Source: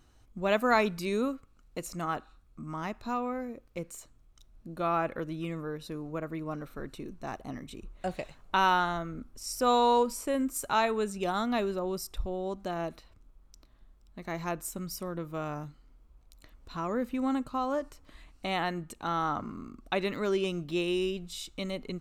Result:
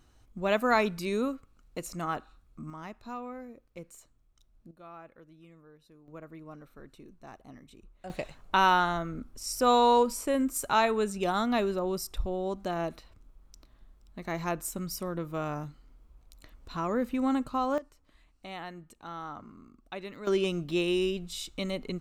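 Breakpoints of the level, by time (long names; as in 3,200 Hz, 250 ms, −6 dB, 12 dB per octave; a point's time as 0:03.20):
0 dB
from 0:02.70 −7 dB
from 0:04.71 −19 dB
from 0:06.08 −10 dB
from 0:08.10 +2 dB
from 0:17.78 −10 dB
from 0:20.27 +2 dB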